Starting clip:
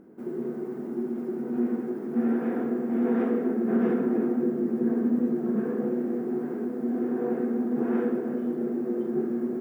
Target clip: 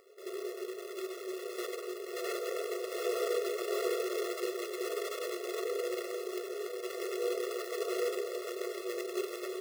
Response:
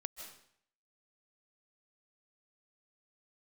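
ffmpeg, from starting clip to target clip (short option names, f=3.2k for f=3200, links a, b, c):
-af "acrusher=bits=2:mode=log:mix=0:aa=0.000001,afftfilt=real='re*eq(mod(floor(b*sr/1024/360),2),1)':imag='im*eq(mod(floor(b*sr/1024/360),2),1)':win_size=1024:overlap=0.75,volume=-2dB"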